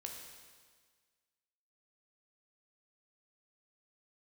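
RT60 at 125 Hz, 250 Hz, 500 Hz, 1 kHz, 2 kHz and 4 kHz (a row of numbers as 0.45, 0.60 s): 1.6, 1.6, 1.6, 1.6, 1.6, 1.6 s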